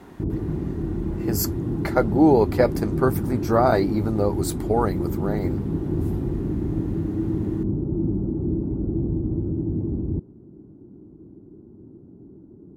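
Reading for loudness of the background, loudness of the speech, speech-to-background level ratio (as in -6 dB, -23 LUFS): -26.5 LUFS, -23.0 LUFS, 3.5 dB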